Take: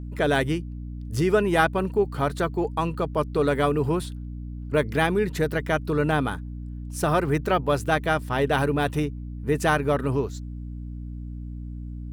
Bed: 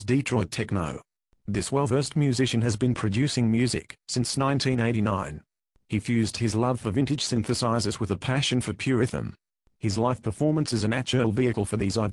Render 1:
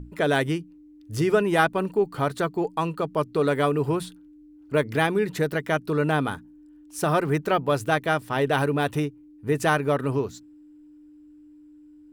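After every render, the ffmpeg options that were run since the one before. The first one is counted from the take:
-af "bandreject=f=60:t=h:w=6,bandreject=f=120:t=h:w=6,bandreject=f=180:t=h:w=6,bandreject=f=240:t=h:w=6"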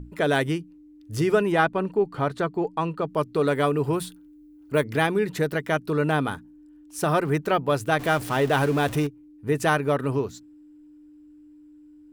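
-filter_complex "[0:a]asettb=1/sr,asplit=3[a][b][c];[a]atrim=end=1.524[d];[b]atrim=start=1.52:end=3.09,asetpts=PTS-STARTPTS,afade=t=in:d=0.004:c=qsin,afade=t=out:st=1.566:d=0.004:c=qsin,aemphasis=mode=reproduction:type=50kf[e];[c]atrim=start=3.086[f];[d][e]acrossfade=d=0.004:c1=hsin:c2=qsin[g];[g][f]acrossfade=d=0.004:c1=qsin:c2=hsin,asettb=1/sr,asplit=3[h][i][j];[h]atrim=end=3.934[k];[i]atrim=start=3.93:end=4.84,asetpts=PTS-STARTPTS,afade=t=in:d=0.004:c=qsin,afade=t=out:st=0.906:d=0.004:c=qsin,highshelf=f=11k:g=11.5[l];[j]atrim=start=4.836[m];[k][l]acrossfade=d=0.004:c1=hsin:c2=qsin[n];[n][m]acrossfade=d=0.004:c1=qsin:c2=hsin,asettb=1/sr,asplit=3[o][p][q];[o]atrim=end=7.994[r];[p]atrim=start=7.99:end=9.07,asetpts=PTS-STARTPTS,afade=t=in:d=0.004:c=qsin,afade=t=out:st=1.076:d=0.004:c=qsin,aeval=exprs='val(0)+0.5*0.0282*sgn(val(0))':c=same[s];[q]atrim=start=9.066[t];[r][s]acrossfade=d=0.004:c1=hsin:c2=qsin[u];[u][t]acrossfade=d=0.004:c1=qsin:c2=hsin"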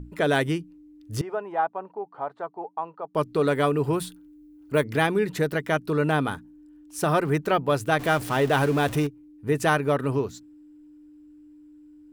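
-filter_complex "[0:a]asettb=1/sr,asplit=3[a][b][c];[a]atrim=end=1.214[d];[b]atrim=start=1.21:end=3.15,asetpts=PTS-STARTPTS,afade=t=in:d=0.004:c=qsin,afade=t=out:st=1.936:d=0.004:c=qsin,bandpass=f=810:t=q:w=2.7[e];[c]atrim=start=3.146[f];[d][e]acrossfade=d=0.004:c1=hsin:c2=qsin[g];[g][f]acrossfade=d=0.004:c1=qsin:c2=hsin"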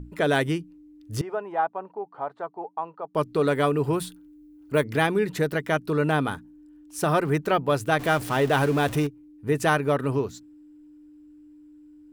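-af anull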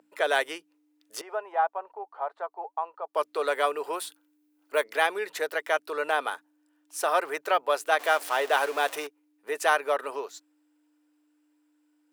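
-af "highpass=f=520:w=0.5412,highpass=f=520:w=1.3066"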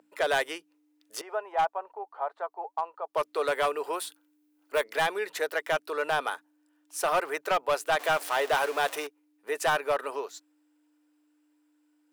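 -af "asoftclip=type=hard:threshold=-19.5dB"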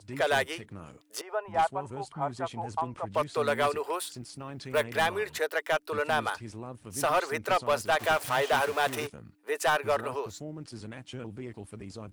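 -filter_complex "[1:a]volume=-17dB[a];[0:a][a]amix=inputs=2:normalize=0"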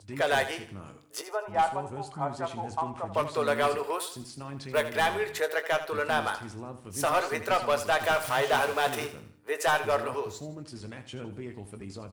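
-filter_complex "[0:a]asplit=2[a][b];[b]adelay=21,volume=-10.5dB[c];[a][c]amix=inputs=2:normalize=0,asplit=2[d][e];[e]aecho=0:1:80|160|240|320:0.251|0.098|0.0382|0.0149[f];[d][f]amix=inputs=2:normalize=0"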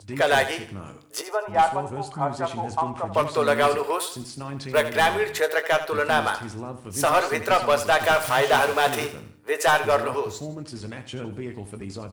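-af "volume=6dB"

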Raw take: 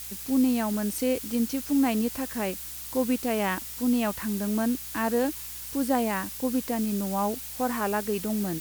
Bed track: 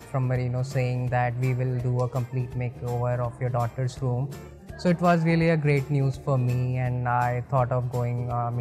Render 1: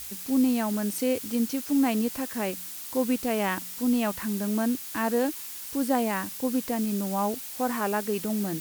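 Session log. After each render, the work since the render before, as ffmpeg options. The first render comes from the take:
-af "bandreject=f=60:t=h:w=4,bandreject=f=120:t=h:w=4,bandreject=f=180:t=h:w=4"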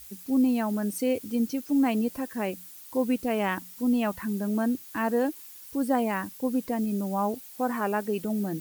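-af "afftdn=nr=11:nf=-39"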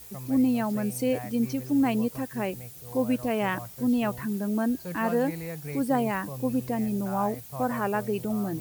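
-filter_complex "[1:a]volume=-15dB[a];[0:a][a]amix=inputs=2:normalize=0"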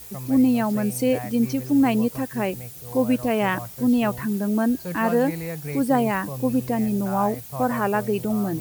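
-af "volume=5dB"

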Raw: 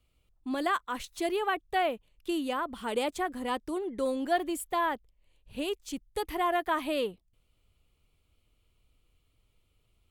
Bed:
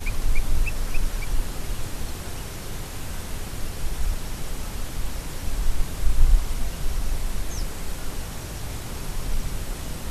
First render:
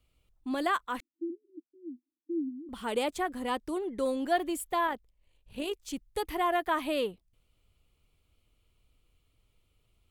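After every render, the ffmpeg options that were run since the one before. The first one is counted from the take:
-filter_complex "[0:a]asettb=1/sr,asplit=3[a][b][c];[a]atrim=end=1.004[d];[b]atrim=start=1:end=2.69,asetpts=PTS-STARTPTS,afade=t=in:d=0.004:c=qsin,afade=t=out:st=1.686:d=0.004:c=qsin,asuperpass=centerf=290:order=12:qfactor=2.9[e];[c]atrim=start=2.686[f];[d][e]acrossfade=d=0.004:c1=hsin:c2=qsin[g];[g][f]acrossfade=d=0.004:c1=qsin:c2=hsin,asettb=1/sr,asplit=3[h][i][j];[h]atrim=end=4.874[k];[i]atrim=start=4.87:end=5.85,asetpts=PTS-STARTPTS,afade=t=in:d=0.004:c=qsin,afade=t=out:st=0.976:d=0.004:c=qsin,tremolo=f=52:d=0.4[l];[j]atrim=start=5.846[m];[k][l]acrossfade=d=0.004:c1=hsin:c2=qsin[n];[n][m]acrossfade=d=0.004:c1=qsin:c2=hsin"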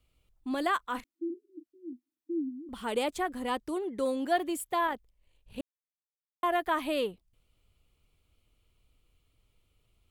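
-filter_complex "[0:a]asettb=1/sr,asplit=3[a][b][c];[a]atrim=end=0.884[d];[b]atrim=start=0.88:end=1.93,asetpts=PTS-STARTPTS,afade=t=in:d=0.004:c=qsin,afade=t=out:st=1.046:d=0.004:c=qsin,asplit=2[e][f];[f]adelay=36,volume=-11dB[g];[e][g]amix=inputs=2:normalize=0,atrim=end_sample=46305[h];[c]atrim=start=1.926[i];[d][h]acrossfade=d=0.004:c1=hsin:c2=qsin[j];[j][i]acrossfade=d=0.004:c1=qsin:c2=hsin,asettb=1/sr,asplit=3[k][l][m];[k]atrim=end=3.634[n];[l]atrim=start=3.63:end=4.82,asetpts=PTS-STARTPTS,afade=t=in:d=0.004:c=qsin,afade=t=out:st=1.186:d=0.004:c=qsin,highpass=60[o];[m]atrim=start=4.816[p];[n][o]acrossfade=d=0.004:c1=hsin:c2=qsin[q];[q][p]acrossfade=d=0.004:c1=qsin:c2=hsin,asplit=3[r][s][t];[r]atrim=end=5.61,asetpts=PTS-STARTPTS,afade=t=out:st=5.606:d=0.004:c=hsin[u];[s]atrim=start=5.61:end=6.43,asetpts=PTS-STARTPTS,volume=0[v];[t]atrim=start=6.43,asetpts=PTS-STARTPTS,afade=t=in:d=0.004:c=hsin[w];[u][v][w]concat=n=3:v=0:a=1"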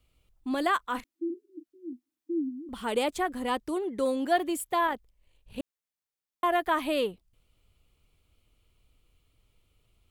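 -af "volume=2.5dB"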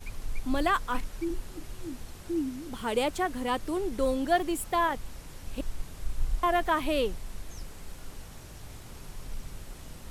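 -filter_complex "[1:a]volume=-12.5dB[a];[0:a][a]amix=inputs=2:normalize=0"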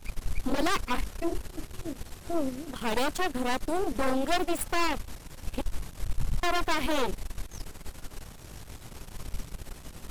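-af "aeval=exprs='0.251*(cos(1*acos(clip(val(0)/0.251,-1,1)))-cos(1*PI/2))+0.0708*(cos(8*acos(clip(val(0)/0.251,-1,1)))-cos(8*PI/2))':c=same,asoftclip=type=tanh:threshold=-17.5dB"

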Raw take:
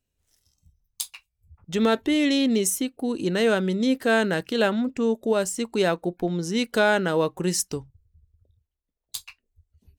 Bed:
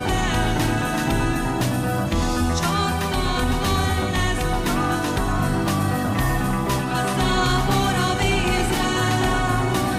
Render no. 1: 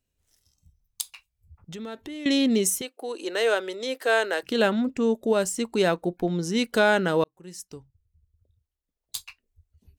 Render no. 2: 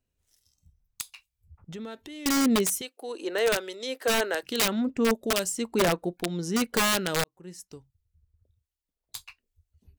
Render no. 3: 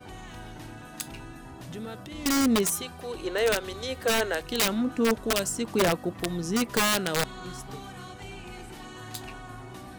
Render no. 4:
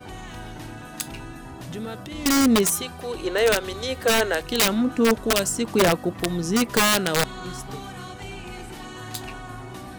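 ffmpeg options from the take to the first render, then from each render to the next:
-filter_complex "[0:a]asettb=1/sr,asplit=3[a][b][c];[a]atrim=end=1.014[d];[b]atrim=start=1.01:end=2.26,asetpts=PTS-STARTPTS,afade=t=in:d=0.004:c=qsin,afade=t=out:st=1.246:d=0.004:c=qsin,acompressor=threshold=-39dB:ratio=3:attack=3.2:release=140:knee=1:detection=peak[e];[c]atrim=start=2.256[f];[d][e]acrossfade=d=0.004:c1=hsin:c2=qsin[g];[g][f]acrossfade=d=0.004:c1=qsin:c2=hsin,asettb=1/sr,asplit=3[h][i][j];[h]atrim=end=2.814[k];[i]atrim=start=2.81:end=4.43,asetpts=PTS-STARTPTS,afade=t=in:d=0.004:c=qsin,afade=t=out:st=1.616:d=0.004:c=qsin,highpass=f=410:w=0.5412,highpass=f=410:w=1.3066[l];[j]atrim=start=4.426[m];[k][l]acrossfade=d=0.004:c1=hsin:c2=qsin[n];[n][m]acrossfade=d=0.004:c1=qsin:c2=hsin,asplit=2[o][p];[o]atrim=end=7.24,asetpts=PTS-STARTPTS,afade=t=out:st=7.236:d=0.004:c=hsin[q];[p]atrim=start=7.24,asetpts=PTS-STARTPTS,afade=t=in:d=1.92[r];[q][r]concat=n=2:v=0:a=1"
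-filter_complex "[0:a]aeval=exprs='(mod(5.62*val(0)+1,2)-1)/5.62':c=same,acrossover=split=2300[a][b];[a]aeval=exprs='val(0)*(1-0.5/2+0.5/2*cos(2*PI*1.2*n/s))':c=same[c];[b]aeval=exprs='val(0)*(1-0.5/2-0.5/2*cos(2*PI*1.2*n/s))':c=same[d];[c][d]amix=inputs=2:normalize=0"
-filter_complex "[1:a]volume=-21.5dB[a];[0:a][a]amix=inputs=2:normalize=0"
-af "volume=5dB"

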